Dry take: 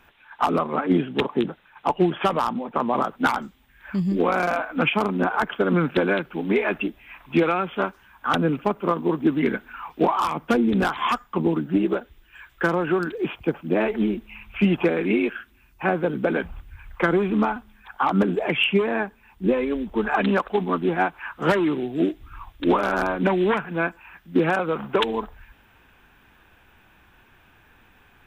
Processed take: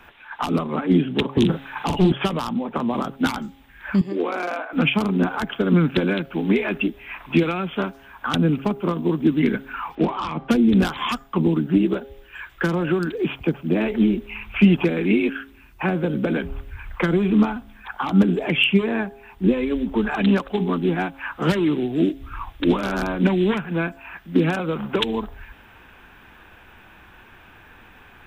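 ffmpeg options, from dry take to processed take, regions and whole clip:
ffmpeg -i in.wav -filter_complex "[0:a]asettb=1/sr,asplit=3[link_01][link_02][link_03];[link_01]atrim=end=1.374[link_04];[link_02]atrim=start=1.37:end=2.12,asetpts=PTS-STARTPTS,afade=type=in:duration=0.004:curve=qsin,afade=type=out:start_time=0.746:duration=0.004:curve=qsin,asplit=2[link_05][link_06];[link_06]adelay=43,volume=-8.5dB[link_07];[link_05][link_07]amix=inputs=2:normalize=0,atrim=end_sample=33075,acrossover=split=190|3000[link_08][link_09][link_10];[link_09]acompressor=threshold=-26dB:ratio=4:attack=3.2:release=140:knee=2.83:detection=peak[link_11];[link_08][link_11][link_10]amix=inputs=3:normalize=0,aeval=exprs='0.211*sin(PI/2*2*val(0)/0.211)':channel_layout=same[link_12];[link_03]atrim=start=2.116[link_13];[link_04][link_12]acrossfade=duration=0.004:curve1=hsin:curve2=qsin[link_14];[link_14][link_13]acrossfade=duration=0.004:curve1=qsin:curve2=hsin,asettb=1/sr,asplit=3[link_15][link_16][link_17];[link_15]atrim=end=4.014[link_18];[link_16]atrim=start=4.01:end=4.73,asetpts=PTS-STARTPTS,afade=type=in:duration=0.004:curve=qsin,afade=type=out:start_time=0.716:duration=0.004:curve=qsin,highpass=frequency=320:width=0.5412,highpass=frequency=320:width=1.3066,highshelf=frequency=4100:gain=-10.5[link_19];[link_17]atrim=start=4.726[link_20];[link_18][link_19]acrossfade=duration=0.004:curve1=hsin:curve2=qsin[link_21];[link_21][link_20]acrossfade=duration=0.004:curve1=qsin:curve2=hsin,asettb=1/sr,asplit=3[link_22][link_23][link_24];[link_22]atrim=end=9.954[link_25];[link_23]atrim=start=9.95:end=10.51,asetpts=PTS-STARTPTS,afade=type=in:duration=0.004:curve=qsin,afade=type=out:start_time=0.556:duration=0.004:curve=qsin,lowpass=3200,bandreject=frequency=391.8:width_type=h:width=4,bandreject=frequency=783.6:width_type=h:width=4,bandreject=frequency=1175.4:width_type=h:width=4,bandreject=frequency=1567.2:width_type=h:width=4,bandreject=frequency=1959:width_type=h:width=4,bandreject=frequency=2350.8:width_type=h:width=4,bandreject=frequency=2742.6:width_type=h:width=4,bandreject=frequency=3134.4:width_type=h:width=4,bandreject=frequency=3526.2:width_type=h:width=4,bandreject=frequency=3918:width_type=h:width=4,bandreject=frequency=4309.8:width_type=h:width=4,asoftclip=type=hard:threshold=-11dB[link_26];[link_24]atrim=start=10.506[link_27];[link_25][link_26]acrossfade=duration=0.004:curve1=hsin:curve2=qsin[link_28];[link_28][link_27]acrossfade=duration=0.004:curve1=qsin:curve2=hsin,bass=frequency=250:gain=-2,treble=frequency=4000:gain=-5,bandreject=frequency=136:width_type=h:width=4,bandreject=frequency=272:width_type=h:width=4,bandreject=frequency=408:width_type=h:width=4,bandreject=frequency=544:width_type=h:width=4,bandreject=frequency=680:width_type=h:width=4,bandreject=frequency=816:width_type=h:width=4,acrossover=split=270|3000[link_29][link_30][link_31];[link_30]acompressor=threshold=-35dB:ratio=6[link_32];[link_29][link_32][link_31]amix=inputs=3:normalize=0,volume=8.5dB" out.wav

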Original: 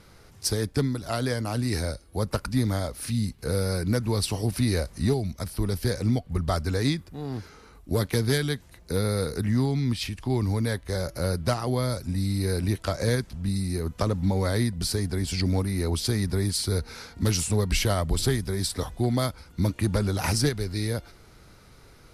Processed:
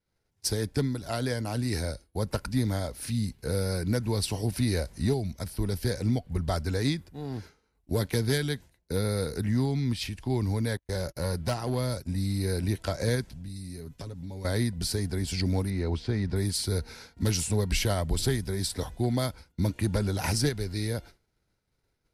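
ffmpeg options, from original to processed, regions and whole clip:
ffmpeg -i in.wav -filter_complex "[0:a]asettb=1/sr,asplit=3[link_01][link_02][link_03];[link_01]atrim=end=10.774[link_04];[link_02]atrim=start=10.77:end=12.34,asetpts=PTS-STARTPTS,afade=type=in:duration=0.004:curve=qsin,afade=type=out:start_time=1.566:duration=0.004:curve=qsin,agate=range=-33dB:threshold=-39dB:ratio=16:release=100:detection=peak,asoftclip=type=hard:threshold=-19.5dB[link_05];[link_03]atrim=start=12.336[link_06];[link_04][link_05]acrossfade=duration=0.004:curve1=hsin:curve2=qsin[link_07];[link_07][link_06]acrossfade=duration=0.004:curve1=qsin:curve2=hsin,asettb=1/sr,asplit=3[link_08][link_09][link_10];[link_08]atrim=end=13.324[link_11];[link_09]atrim=start=13.32:end=14.45,asetpts=PTS-STARTPTS,afade=type=in:duration=0.004:curve=qsin,afade=type=out:start_time=1.126:duration=0.004:curve=qsin,equalizer=frequency=810:width=0.56:gain=-6.5,aecho=1:1:7.2:0.46,atrim=end_sample=49833,acompressor=threshold=-34dB:ratio=4:attack=3.2:release=140:knee=1:detection=peak[link_12];[link_10]atrim=start=14.446[link_13];[link_11][link_12]acrossfade=duration=0.004:curve1=hsin:curve2=qsin[link_14];[link_14][link_13]acrossfade=duration=0.004:curve1=qsin:curve2=hsin,asettb=1/sr,asplit=3[link_15][link_16][link_17];[link_15]atrim=end=15.704[link_18];[link_16]atrim=start=15.7:end=16.36,asetpts=PTS-STARTPTS,afade=type=in:duration=0.004:curve=qsin,afade=type=out:start_time=0.656:duration=0.004:curve=qsin,lowpass=4600,acrossover=split=2600[link_19][link_20];[link_20]acompressor=threshold=-44dB:ratio=4:attack=1:release=60[link_21];[link_19][link_21]amix=inputs=2:normalize=0[link_22];[link_17]atrim=start=16.356[link_23];[link_18][link_22]acrossfade=duration=0.004:curve1=hsin:curve2=qsin[link_24];[link_24][link_23]acrossfade=duration=0.004:curve1=qsin:curve2=hsin,agate=range=-33dB:threshold=-37dB:ratio=3:detection=peak,bandreject=frequency=1200:width=6.5,volume=-2.5dB" out.wav

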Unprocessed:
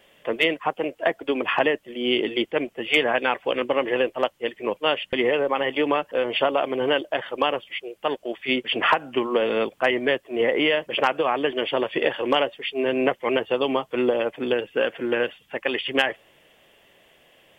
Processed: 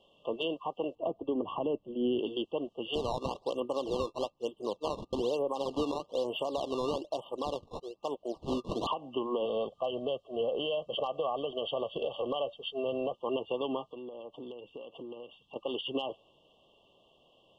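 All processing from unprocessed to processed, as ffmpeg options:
ffmpeg -i in.wav -filter_complex "[0:a]asettb=1/sr,asplit=3[link_01][link_02][link_03];[link_01]atrim=end=0.954[link_04];[link_02]atrim=start=0.95:end=2.19,asetpts=PTS-STARTPTS,afade=type=in:duration=0.004:curve=qsin,afade=type=out:start_time=1.236:duration=0.004:curve=qsin,lowpass=frequency=1100:poles=1,lowshelf=frequency=350:gain=8[link_05];[link_03]atrim=start=2.186[link_06];[link_04][link_05]acrossfade=duration=0.004:curve1=hsin:curve2=qsin[link_07];[link_07][link_06]acrossfade=duration=0.004:curve1=qsin:curve2=hsin,asettb=1/sr,asplit=3[link_08][link_09][link_10];[link_08]atrim=end=2.954[link_11];[link_09]atrim=start=2.95:end=8.87,asetpts=PTS-STARTPTS,afade=type=in:duration=0.004:curve=qsin,afade=type=out:start_time=5.916:duration=0.004:curve=qsin,lowpass=frequency=2700:poles=1,acrusher=samples=16:mix=1:aa=0.000001:lfo=1:lforange=25.6:lforate=1.1[link_12];[link_10]atrim=start=8.866[link_13];[link_11][link_12]acrossfade=duration=0.004:curve1=hsin:curve2=qsin[link_14];[link_14][link_13]acrossfade=duration=0.004:curve1=qsin:curve2=hsin,asettb=1/sr,asplit=3[link_15][link_16][link_17];[link_15]atrim=end=9.454[link_18];[link_16]atrim=start=9.45:end=13.13,asetpts=PTS-STARTPTS,afade=type=in:duration=0.004:curve=qsin,afade=type=out:start_time=3.676:duration=0.004:curve=qsin,aecho=1:1:1.6:0.58,atrim=end_sample=162288,acompressor=threshold=-21dB:ratio=3:attack=3.2:release=140:knee=1:detection=peak[link_19];[link_17]atrim=start=13.126[link_20];[link_18][link_19]acrossfade=duration=0.004:curve1=hsin:curve2=qsin[link_21];[link_21][link_20]acrossfade=duration=0.004:curve1=qsin:curve2=hsin,asettb=1/sr,asplit=3[link_22][link_23][link_24];[link_22]atrim=end=13.864[link_25];[link_23]atrim=start=13.86:end=15.56,asetpts=PTS-STARTPTS,afade=type=in:duration=0.004:curve=qsin,afade=type=out:start_time=1.696:duration=0.004:curve=qsin,acompressor=threshold=-33dB:ratio=16:attack=3.2:release=140:knee=1:detection=peak,volume=26.5dB,asoftclip=hard,volume=-26.5dB[link_26];[link_24]atrim=start=15.556[link_27];[link_25][link_26]acrossfade=duration=0.004:curve1=hsin:curve2=qsin[link_28];[link_28][link_27]acrossfade=duration=0.004:curve1=qsin:curve2=hsin,afftfilt=real='re*(1-between(b*sr/4096,1200,2700))':imag='im*(1-between(b*sr/4096,1200,2700))':win_size=4096:overlap=0.75,lowpass=4000,alimiter=limit=-16dB:level=0:latency=1:release=111,volume=-6.5dB" out.wav

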